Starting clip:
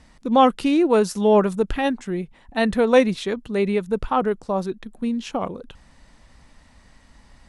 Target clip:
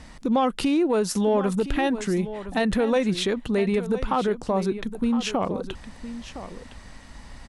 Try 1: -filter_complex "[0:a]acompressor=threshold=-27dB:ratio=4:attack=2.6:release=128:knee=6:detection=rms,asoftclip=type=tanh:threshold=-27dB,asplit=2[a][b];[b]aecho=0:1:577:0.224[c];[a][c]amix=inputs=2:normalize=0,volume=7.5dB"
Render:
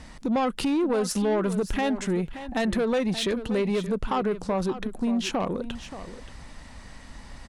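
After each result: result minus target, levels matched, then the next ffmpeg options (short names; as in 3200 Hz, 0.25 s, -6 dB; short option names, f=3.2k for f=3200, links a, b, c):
soft clip: distortion +16 dB; echo 0.436 s early
-filter_complex "[0:a]acompressor=threshold=-27dB:ratio=4:attack=2.6:release=128:knee=6:detection=rms,asoftclip=type=tanh:threshold=-17dB,asplit=2[a][b];[b]aecho=0:1:577:0.224[c];[a][c]amix=inputs=2:normalize=0,volume=7.5dB"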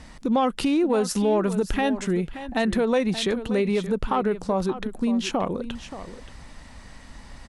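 echo 0.436 s early
-filter_complex "[0:a]acompressor=threshold=-27dB:ratio=4:attack=2.6:release=128:knee=6:detection=rms,asoftclip=type=tanh:threshold=-17dB,asplit=2[a][b];[b]aecho=0:1:1013:0.224[c];[a][c]amix=inputs=2:normalize=0,volume=7.5dB"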